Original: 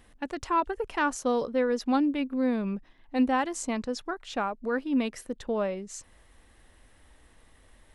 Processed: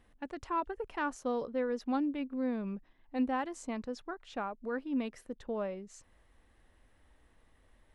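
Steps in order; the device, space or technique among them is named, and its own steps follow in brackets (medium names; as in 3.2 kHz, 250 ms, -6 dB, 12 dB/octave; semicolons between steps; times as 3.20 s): behind a face mask (treble shelf 3.5 kHz -8 dB); trim -7 dB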